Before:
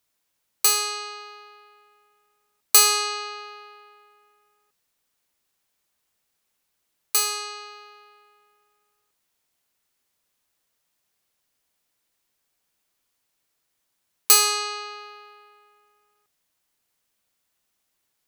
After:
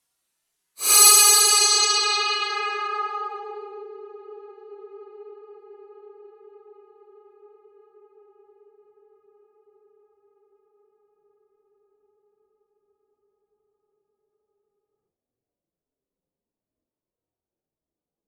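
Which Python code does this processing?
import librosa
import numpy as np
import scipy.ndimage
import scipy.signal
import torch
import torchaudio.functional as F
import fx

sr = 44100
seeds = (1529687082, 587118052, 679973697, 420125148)

y = fx.paulstretch(x, sr, seeds[0], factor=7.2, window_s=0.05, from_s=14.17)
y = fx.filter_sweep_lowpass(y, sr, from_hz=11000.0, to_hz=430.0, start_s=1.4, end_s=3.91, q=1.4)
y = y * 10.0 ** (-1.0 / 20.0)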